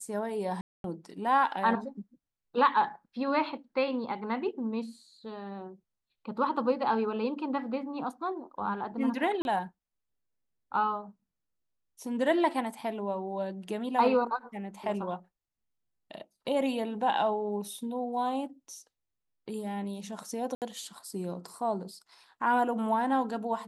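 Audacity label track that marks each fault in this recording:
0.610000	0.840000	gap 0.232 s
9.420000	9.450000	gap 31 ms
20.550000	20.620000	gap 68 ms

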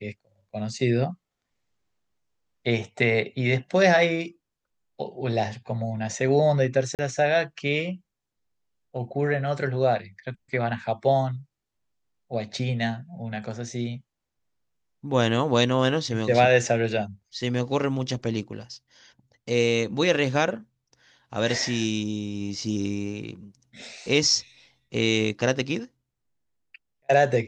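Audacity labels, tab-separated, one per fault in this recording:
6.950000	6.990000	gap 38 ms

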